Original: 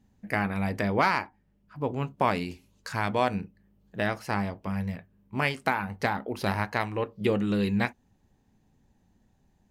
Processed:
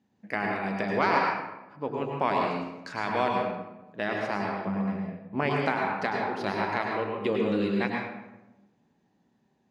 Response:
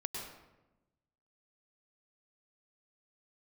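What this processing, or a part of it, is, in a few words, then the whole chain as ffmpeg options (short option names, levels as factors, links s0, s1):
supermarket ceiling speaker: -filter_complex "[0:a]asettb=1/sr,asplit=3[s0][s1][s2];[s0]atrim=end=4.634[s3];[s1]atrim=start=4.63:end=5.51,asetpts=PTS-STARTPTS,afade=t=in:d=0.004:c=qsin,afade=t=out:st=0.876:d=0.004:c=qsin,tiltshelf=f=1300:g=6.5[s4];[s2]atrim=start=5.506[s5];[s3][s4]acrossfade=d=0.004:c1=hsin:c2=qsin[s6];[s6][s5]acrossfade=d=0.004:c1=qsin:c2=hsin,highpass=210,lowpass=5300[s7];[1:a]atrim=start_sample=2205[s8];[s7][s8]afir=irnorm=-1:irlink=0"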